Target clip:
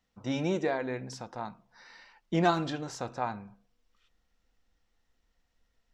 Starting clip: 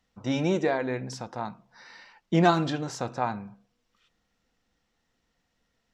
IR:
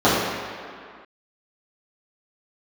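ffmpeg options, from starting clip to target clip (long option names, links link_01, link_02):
-af "asubboost=boost=5:cutoff=61,volume=-4dB"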